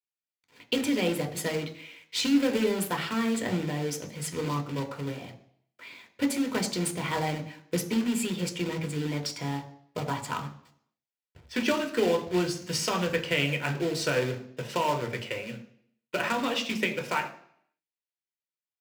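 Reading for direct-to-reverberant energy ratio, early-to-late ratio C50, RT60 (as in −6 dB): 5.0 dB, 13.0 dB, 0.65 s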